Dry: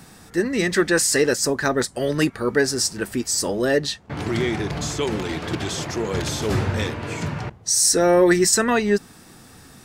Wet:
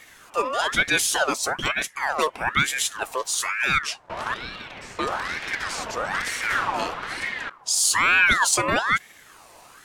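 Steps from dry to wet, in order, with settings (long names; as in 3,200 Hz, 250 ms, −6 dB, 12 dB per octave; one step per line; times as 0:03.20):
0:01.12–0:02.03: notch comb filter 380 Hz
0:04.34–0:04.99: three-way crossover with the lows and the highs turned down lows −18 dB, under 590 Hz, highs −14 dB, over 2,100 Hz
ring modulator whose carrier an LFO sweeps 1,400 Hz, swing 45%, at 1.1 Hz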